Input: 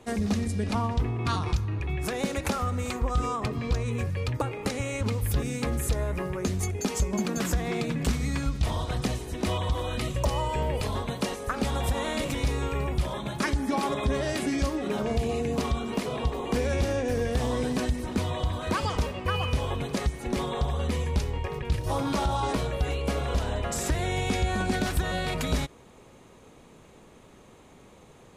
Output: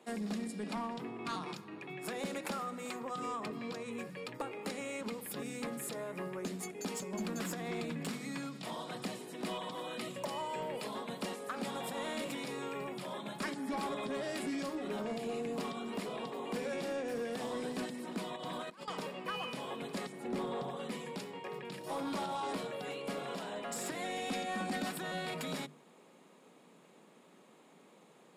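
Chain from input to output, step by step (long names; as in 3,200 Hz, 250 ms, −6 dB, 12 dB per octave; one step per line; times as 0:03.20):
Butterworth high-pass 160 Hz 48 dB per octave
notch filter 6,100 Hz, Q 7.3
0:20.12–0:20.77: tilt shelving filter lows +4 dB, about 1,200 Hz
mains-hum notches 50/100/150/200/250/300/350/400/450/500 Hz
0:18.36–0:18.88: compressor whose output falls as the input rises −36 dBFS, ratio −0.5
0:23.95–0:24.91: comb filter 3.8 ms, depth 67%
soft clipping −23 dBFS, distortion −17 dB
level −7 dB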